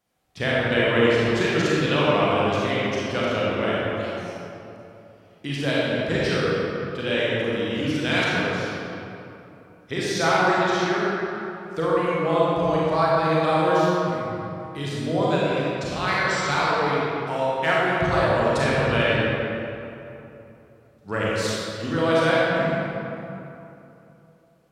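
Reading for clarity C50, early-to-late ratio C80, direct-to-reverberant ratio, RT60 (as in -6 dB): -5.0 dB, -3.0 dB, -7.5 dB, 3.0 s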